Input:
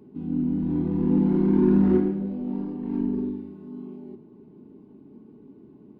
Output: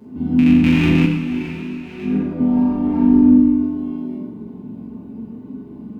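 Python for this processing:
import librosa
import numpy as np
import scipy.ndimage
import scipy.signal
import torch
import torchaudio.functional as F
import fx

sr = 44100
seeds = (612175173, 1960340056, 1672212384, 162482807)

p1 = fx.rattle_buzz(x, sr, strikes_db=-22.0, level_db=-17.0)
p2 = fx.over_compress(p1, sr, threshold_db=-25.0, ratio=-0.5)
p3 = fx.peak_eq(p2, sr, hz=370.0, db=-11.0, octaves=0.2)
p4 = p3 + fx.room_flutter(p3, sr, wall_m=7.5, rt60_s=0.54, dry=0)
p5 = fx.rev_fdn(p4, sr, rt60_s=1.2, lf_ratio=1.3, hf_ratio=0.8, size_ms=79.0, drr_db=-8.5)
p6 = fx.detune_double(p5, sr, cents=16, at=(1.05, 2.39), fade=0.02)
y = F.gain(torch.from_numpy(p6), 1.0).numpy()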